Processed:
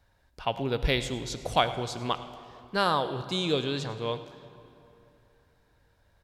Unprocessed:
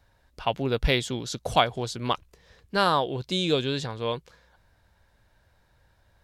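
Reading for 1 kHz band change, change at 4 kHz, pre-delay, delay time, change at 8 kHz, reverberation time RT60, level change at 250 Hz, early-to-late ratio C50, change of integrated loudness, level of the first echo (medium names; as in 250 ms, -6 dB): -2.5 dB, -2.5 dB, 34 ms, 105 ms, -3.0 dB, 2.9 s, -2.5 dB, 11.5 dB, -2.5 dB, -17.5 dB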